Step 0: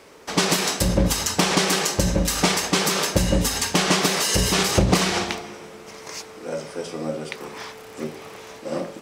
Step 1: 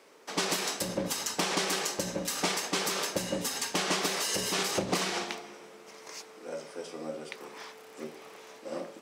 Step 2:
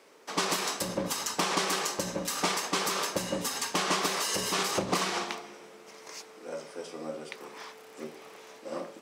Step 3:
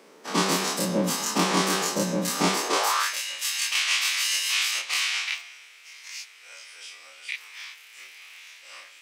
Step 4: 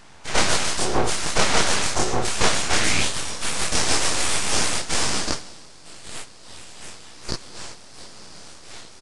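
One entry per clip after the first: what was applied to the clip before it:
high-pass 240 Hz 12 dB/octave; trim -9 dB
dynamic bell 1.1 kHz, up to +6 dB, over -50 dBFS, Q 2.7
every event in the spectrogram widened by 60 ms; high-pass sweep 190 Hz -> 2.4 kHz, 2.49–3.18 s
full-wave rectifier; resampled via 22.05 kHz; trim +7 dB

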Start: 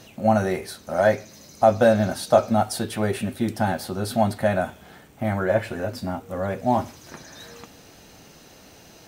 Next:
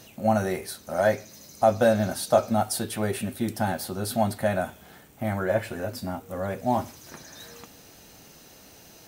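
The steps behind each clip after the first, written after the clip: treble shelf 8.1 kHz +10 dB; trim -3.5 dB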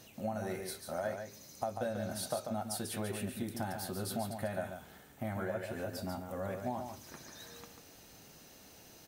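compression 6:1, threshold -27 dBFS, peak gain reduction 13 dB; on a send: delay 142 ms -6.5 dB; on the sum: trim -7 dB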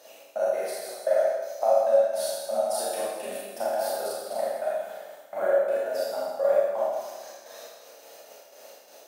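trance gate "xx..x.xx.x.." 169 bpm -60 dB; resonant high-pass 570 Hz, resonance Q 4.9; Schroeder reverb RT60 1.3 s, combs from 27 ms, DRR -7 dB

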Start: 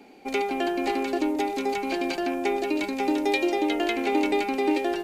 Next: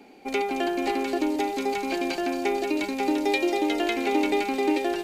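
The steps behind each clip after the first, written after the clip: feedback echo behind a high-pass 223 ms, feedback 75%, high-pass 5.2 kHz, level -4 dB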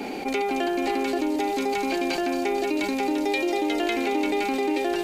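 level flattener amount 70%; trim -3 dB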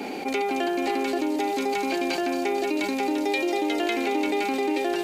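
high-pass 130 Hz 6 dB/octave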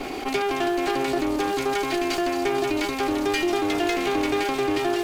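comb filter that takes the minimum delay 2.8 ms; trim +2.5 dB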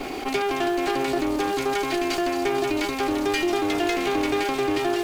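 bit crusher 9-bit

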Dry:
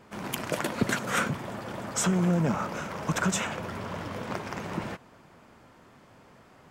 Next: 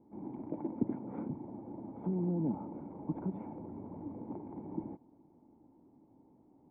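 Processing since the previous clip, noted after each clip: cascade formant filter u; trim +2 dB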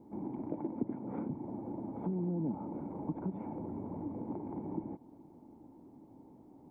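compression 2:1, threshold -46 dBFS, peak gain reduction 11.5 dB; trim +7 dB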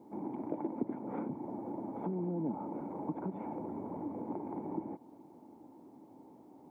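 high-pass 410 Hz 6 dB/octave; trim +5 dB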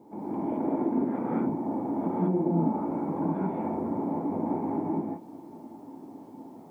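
gated-style reverb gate 240 ms rising, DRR -7.5 dB; trim +2.5 dB

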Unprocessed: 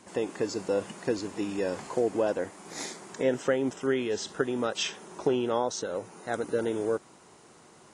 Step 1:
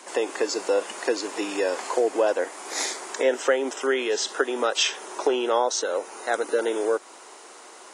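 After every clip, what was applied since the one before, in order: Bessel high-pass 500 Hz, order 6; in parallel at -1 dB: compression, threshold -37 dBFS, peak gain reduction 13 dB; on the sum: trim +6 dB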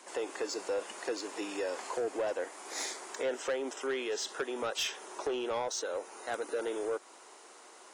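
saturation -18 dBFS, distortion -14 dB; trim -8.5 dB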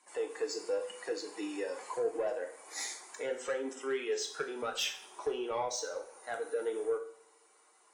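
expander on every frequency bin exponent 1.5; two-slope reverb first 0.5 s, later 2.1 s, from -25 dB, DRR 3 dB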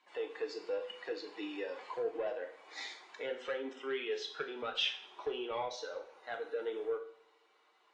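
four-pole ladder low-pass 4.1 kHz, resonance 45%; trim +5.5 dB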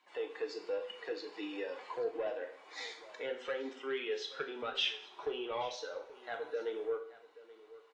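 delay 829 ms -18.5 dB

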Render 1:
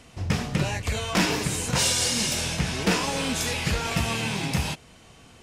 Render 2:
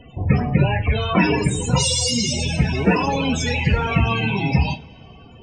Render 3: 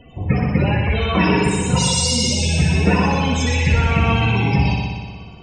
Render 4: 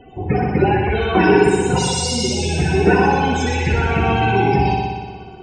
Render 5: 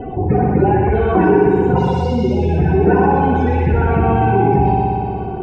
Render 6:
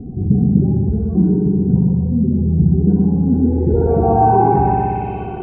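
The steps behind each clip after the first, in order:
loudest bins only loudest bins 32; two-slope reverb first 0.27 s, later 2.4 s, from -22 dB, DRR 7.5 dB; trim +8 dB
multi-head delay 61 ms, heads first and second, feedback 64%, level -6.5 dB; trim -1 dB
small resonant body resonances 380/770/1500 Hz, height 17 dB, ringing for 45 ms; trim -3.5 dB
low-pass 1.1 kHz 12 dB/octave; level flattener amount 50%
low-pass sweep 200 Hz -> 2.6 kHz, 3.22–5.15 s; trim -2 dB

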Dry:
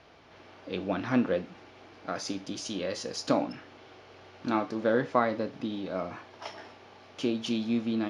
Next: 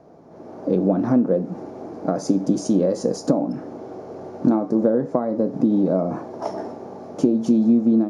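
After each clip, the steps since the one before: compression 10:1, threshold -34 dBFS, peak gain reduction 16 dB; FFT filter 100 Hz 0 dB, 160 Hz +14 dB, 670 Hz +9 dB, 3 kHz -20 dB, 7.3 kHz +1 dB; level rider gain up to 9 dB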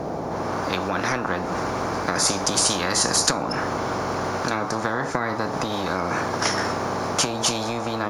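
spectrum-flattening compressor 10:1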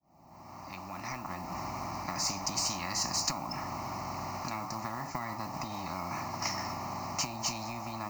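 fade-in on the opening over 1.56 s; modulation noise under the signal 17 dB; static phaser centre 2.3 kHz, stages 8; trim -9 dB

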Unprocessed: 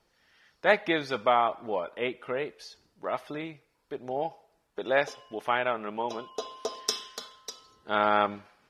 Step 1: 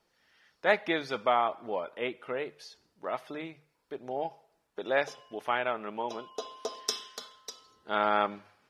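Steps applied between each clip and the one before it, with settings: bass shelf 75 Hz -7.5 dB; hum notches 50/100/150 Hz; trim -2.5 dB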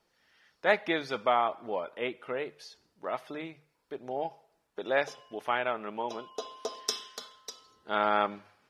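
no audible change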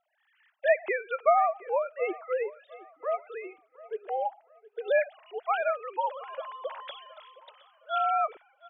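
formants replaced by sine waves; feedback delay 717 ms, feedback 34%, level -20 dB; trim +2.5 dB

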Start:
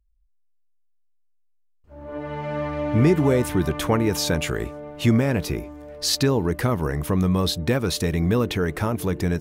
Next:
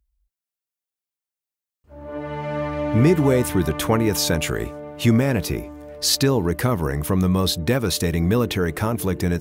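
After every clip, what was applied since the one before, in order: high-pass 41 Hz; treble shelf 8.2 kHz +6 dB; trim +1.5 dB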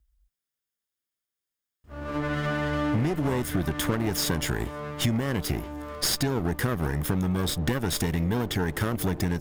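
comb filter that takes the minimum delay 0.59 ms; compression 6:1, threshold -27 dBFS, peak gain reduction 14.5 dB; trim +3.5 dB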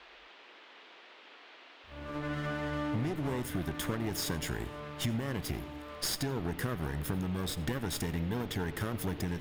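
band noise 280–3400 Hz -47 dBFS; reverberation RT60 0.55 s, pre-delay 80 ms, DRR 16.5 dB; trim -8 dB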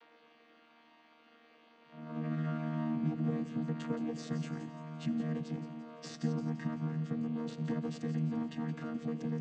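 vocoder on a held chord bare fifth, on D#3; feedback echo behind a high-pass 171 ms, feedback 46%, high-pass 3.7 kHz, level -9 dB

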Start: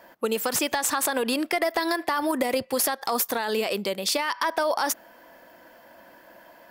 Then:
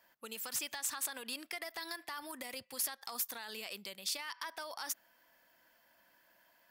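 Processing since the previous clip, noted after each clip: amplifier tone stack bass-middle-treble 5-5-5; trim -4.5 dB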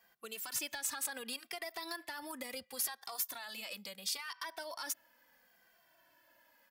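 endless flanger 2.1 ms -0.72 Hz; trim +3 dB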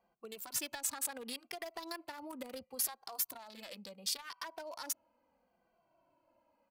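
local Wiener filter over 25 samples; trim +2 dB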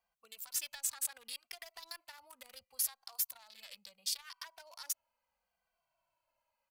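amplifier tone stack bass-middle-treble 10-0-10; trim +1 dB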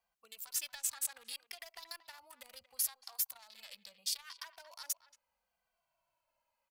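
speakerphone echo 230 ms, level -14 dB

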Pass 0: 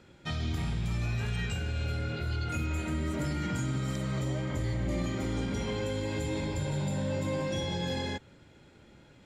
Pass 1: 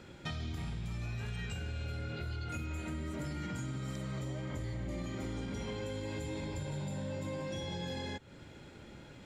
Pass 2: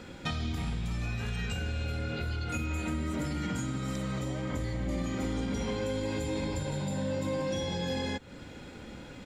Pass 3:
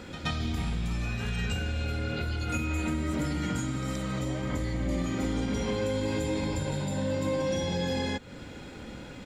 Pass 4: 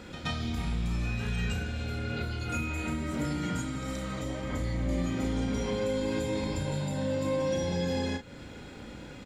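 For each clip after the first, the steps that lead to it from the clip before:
compression 4:1, threshold -43 dBFS, peak gain reduction 13 dB; trim +4.5 dB
comb 4 ms, depth 33%; trim +6.5 dB
reverse echo 125 ms -12 dB; trim +2.5 dB
doubling 34 ms -7 dB; trim -2.5 dB

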